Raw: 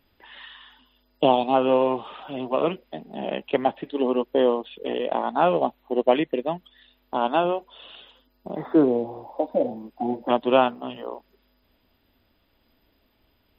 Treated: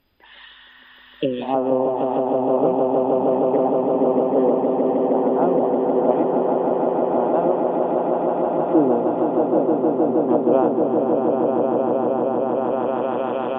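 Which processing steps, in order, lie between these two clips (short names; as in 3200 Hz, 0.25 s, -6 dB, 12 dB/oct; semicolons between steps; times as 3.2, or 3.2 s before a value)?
swelling echo 0.156 s, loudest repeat 8, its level -5.5 dB; spectral repair 0.56–1.4, 600–2300 Hz before; treble ducked by the level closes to 820 Hz, closed at -15.5 dBFS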